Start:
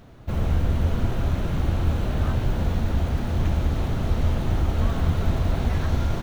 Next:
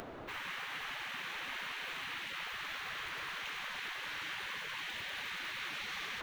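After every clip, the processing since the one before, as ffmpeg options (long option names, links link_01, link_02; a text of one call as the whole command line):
ffmpeg -i in.wav -filter_complex "[0:a]acrossover=split=280 3200:gain=0.126 1 0.251[link_01][link_02][link_03];[link_01][link_02][link_03]amix=inputs=3:normalize=0,acompressor=mode=upward:threshold=-48dB:ratio=2.5,afftfilt=real='re*lt(hypot(re,im),0.0224)':imag='im*lt(hypot(re,im),0.0224)':win_size=1024:overlap=0.75,volume=5.5dB" out.wav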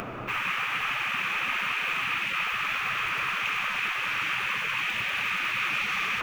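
ffmpeg -i in.wav -af "equalizer=frequency=125:width_type=o:width=0.33:gain=9,equalizer=frequency=200:width_type=o:width=0.33:gain=7,equalizer=frequency=1250:width_type=o:width=0.33:gain=9,equalizer=frequency=2500:width_type=o:width=0.33:gain=11,equalizer=frequency=4000:width_type=o:width=0.33:gain=-7,volume=8dB" out.wav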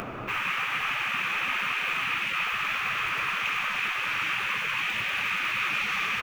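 ffmpeg -i in.wav -filter_complex "[0:a]asplit=2[link_01][link_02];[link_02]adelay=19,volume=-13.5dB[link_03];[link_01][link_03]amix=inputs=2:normalize=0" out.wav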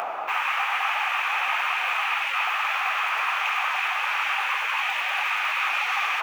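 ffmpeg -i in.wav -af "areverse,acompressor=mode=upward:threshold=-31dB:ratio=2.5,areverse,highpass=frequency=780:width_type=q:width=4.9,volume=1dB" out.wav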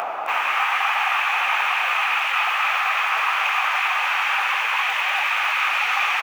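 ffmpeg -i in.wav -af "aecho=1:1:263:0.531,volume=3dB" out.wav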